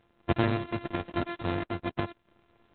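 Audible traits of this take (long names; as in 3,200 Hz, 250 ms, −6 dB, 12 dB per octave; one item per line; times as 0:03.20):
a buzz of ramps at a fixed pitch in blocks of 128 samples
sample-and-hold tremolo 4 Hz
Opus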